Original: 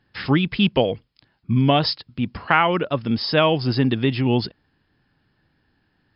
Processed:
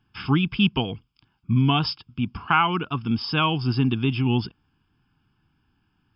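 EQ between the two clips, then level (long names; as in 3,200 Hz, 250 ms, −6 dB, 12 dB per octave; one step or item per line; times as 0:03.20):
phaser with its sweep stopped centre 2,800 Hz, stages 8
0.0 dB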